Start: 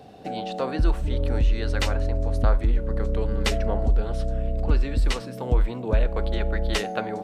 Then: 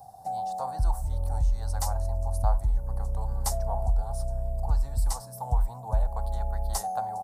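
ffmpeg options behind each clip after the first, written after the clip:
-af "firequalizer=gain_entry='entry(120,0);entry(220,-15);entry(370,-23);entry(790,10);entry(1300,-9);entry(2600,-25);entry(4900,0);entry(10000,15)':delay=0.05:min_phase=1,volume=0.631"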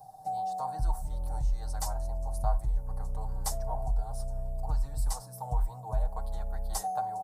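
-af "aecho=1:1:6.5:0.72,volume=0.562"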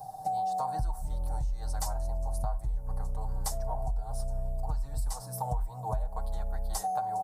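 -af "acompressor=threshold=0.0158:ratio=6,volume=2.37"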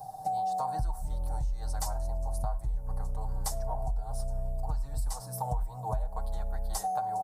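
-filter_complex "[0:a]asplit=2[s0][s1];[s1]adelay=105,volume=0.0447,highshelf=f=4000:g=-2.36[s2];[s0][s2]amix=inputs=2:normalize=0"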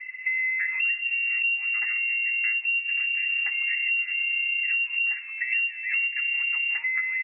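-af "lowpass=f=2400:t=q:w=0.5098,lowpass=f=2400:t=q:w=0.6013,lowpass=f=2400:t=q:w=0.9,lowpass=f=2400:t=q:w=2.563,afreqshift=-2800,volume=1.68"

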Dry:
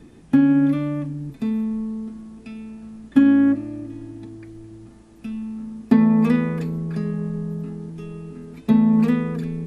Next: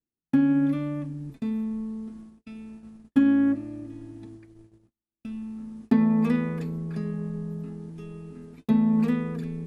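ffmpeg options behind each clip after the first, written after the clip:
-af "agate=range=0.00708:threshold=0.0126:ratio=16:detection=peak,volume=0.531"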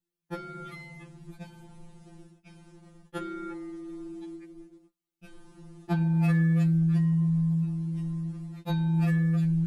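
-af "afftfilt=real='re*2.83*eq(mod(b,8),0)':imag='im*2.83*eq(mod(b,8),0)':win_size=2048:overlap=0.75,volume=1.78"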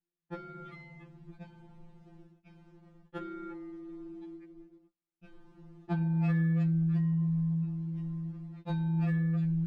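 -af "adynamicsmooth=sensitivity=2:basefreq=3500,volume=0.596"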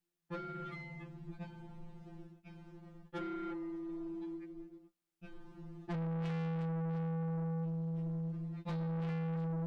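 -af "asoftclip=type=tanh:threshold=0.0112,volume=1.5"

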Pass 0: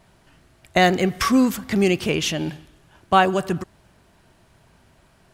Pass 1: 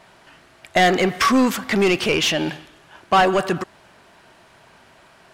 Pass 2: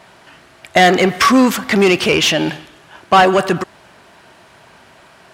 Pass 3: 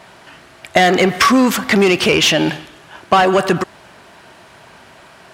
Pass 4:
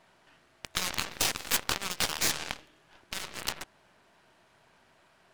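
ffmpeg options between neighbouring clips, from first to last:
-filter_complex "[0:a]asplit=2[s0][s1];[s1]highpass=f=720:p=1,volume=11.2,asoftclip=type=tanh:threshold=0.75[s2];[s0][s2]amix=inputs=2:normalize=0,lowpass=f=3500:p=1,volume=0.501,volume=0.631"
-af "highpass=46,volume=1.88"
-af "acompressor=threshold=0.282:ratio=6,volume=1.33"
-af "afftfilt=real='re*lt(hypot(re,im),0.282)':imag='im*lt(hypot(re,im),0.282)':win_size=1024:overlap=0.75,aeval=exprs='0.398*(cos(1*acos(clip(val(0)/0.398,-1,1)))-cos(1*PI/2))+0.0447*(cos(3*acos(clip(val(0)/0.398,-1,1)))-cos(3*PI/2))+0.0501*(cos(4*acos(clip(val(0)/0.398,-1,1)))-cos(4*PI/2))+0.0447*(cos(7*acos(clip(val(0)/0.398,-1,1)))-cos(7*PI/2))':c=same,volume=0.794"

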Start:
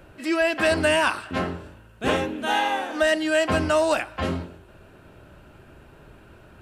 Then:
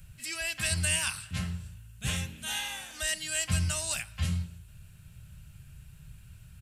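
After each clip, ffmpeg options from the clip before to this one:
-af "firequalizer=gain_entry='entry(150,0);entry(280,-30);entry(2200,-9);entry(7600,5)':delay=0.05:min_phase=1,volume=1.33"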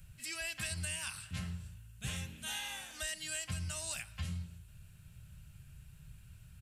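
-af "acompressor=threshold=0.0282:ratio=6,volume=0.596"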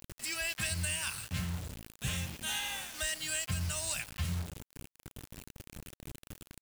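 -af "acrusher=bits=7:mix=0:aa=0.000001,volume=1.68"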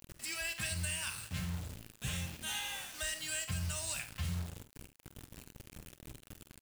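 -af "aecho=1:1:47|74:0.282|0.168,volume=0.668"

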